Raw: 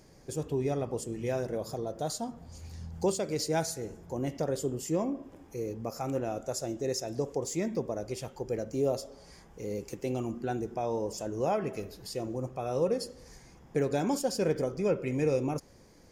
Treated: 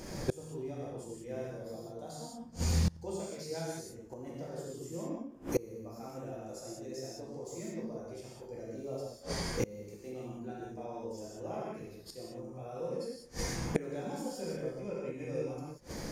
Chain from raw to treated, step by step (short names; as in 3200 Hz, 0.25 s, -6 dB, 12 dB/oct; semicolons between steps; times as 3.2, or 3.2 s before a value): non-linear reverb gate 0.22 s flat, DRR -6.5 dB; flipped gate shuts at -27 dBFS, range -27 dB; gain +10 dB